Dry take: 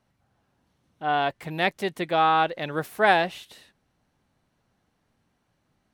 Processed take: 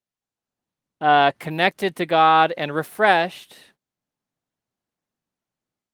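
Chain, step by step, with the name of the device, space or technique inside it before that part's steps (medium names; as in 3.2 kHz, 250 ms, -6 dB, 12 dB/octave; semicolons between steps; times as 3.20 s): video call (high-pass 130 Hz 12 dB/octave; level rider gain up to 11 dB; gate -55 dBFS, range -25 dB; Opus 32 kbps 48 kHz)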